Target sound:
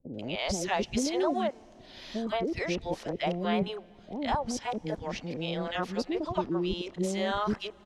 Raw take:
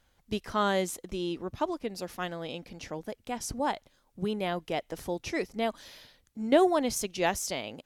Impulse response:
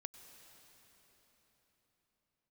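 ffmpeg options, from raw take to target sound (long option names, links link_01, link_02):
-filter_complex "[0:a]areverse,lowpass=4500,acompressor=threshold=-30dB:ratio=5,acrossover=split=480|1600[link_01][link_02][link_03];[link_03]adelay=140[link_04];[link_02]adelay=170[link_05];[link_01][link_05][link_04]amix=inputs=3:normalize=0,asplit=2[link_06][link_07];[1:a]atrim=start_sample=2205[link_08];[link_07][link_08]afir=irnorm=-1:irlink=0,volume=-11dB[link_09];[link_06][link_09]amix=inputs=2:normalize=0,volume=5.5dB"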